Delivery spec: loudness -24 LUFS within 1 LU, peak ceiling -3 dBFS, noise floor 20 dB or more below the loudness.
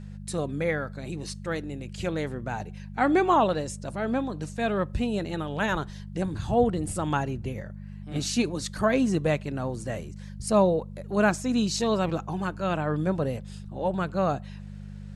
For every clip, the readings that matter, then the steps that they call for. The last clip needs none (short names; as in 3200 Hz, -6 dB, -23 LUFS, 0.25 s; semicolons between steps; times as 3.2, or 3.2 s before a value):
hum 50 Hz; harmonics up to 200 Hz; hum level -37 dBFS; loudness -28.0 LUFS; peak -10.5 dBFS; loudness target -24.0 LUFS
-> de-hum 50 Hz, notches 4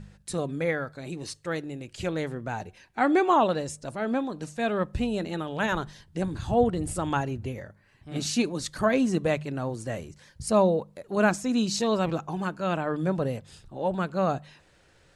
hum none; loudness -28.0 LUFS; peak -10.5 dBFS; loudness target -24.0 LUFS
-> gain +4 dB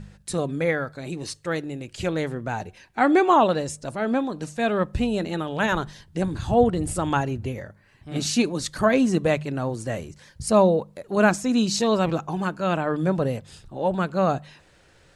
loudness -24.0 LUFS; peak -6.5 dBFS; noise floor -56 dBFS